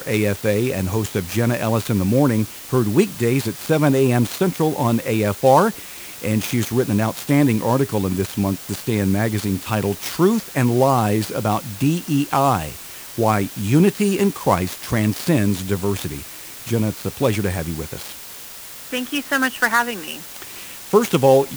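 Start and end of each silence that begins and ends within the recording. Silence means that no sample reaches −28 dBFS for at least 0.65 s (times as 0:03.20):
0:18.13–0:18.93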